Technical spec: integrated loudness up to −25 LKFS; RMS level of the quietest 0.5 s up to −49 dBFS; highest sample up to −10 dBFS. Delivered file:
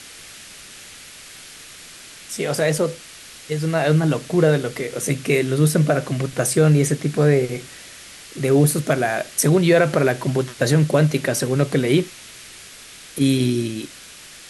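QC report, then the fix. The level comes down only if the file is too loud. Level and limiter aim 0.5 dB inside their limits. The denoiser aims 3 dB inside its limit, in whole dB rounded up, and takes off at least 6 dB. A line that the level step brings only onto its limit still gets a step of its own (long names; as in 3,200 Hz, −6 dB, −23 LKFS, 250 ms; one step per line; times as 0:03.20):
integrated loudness −19.5 LKFS: out of spec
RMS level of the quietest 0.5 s −42 dBFS: out of spec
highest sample −5.5 dBFS: out of spec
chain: broadband denoise 6 dB, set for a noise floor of −42 dBFS
level −6 dB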